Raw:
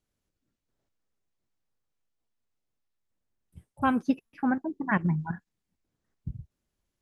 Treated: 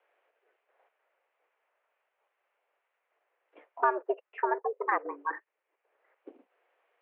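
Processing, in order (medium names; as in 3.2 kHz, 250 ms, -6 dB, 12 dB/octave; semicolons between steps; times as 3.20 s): mistuned SSB +130 Hz 370–2500 Hz; low-pass that closes with the level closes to 1.1 kHz, closed at -30 dBFS; three bands compressed up and down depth 40%; trim +5.5 dB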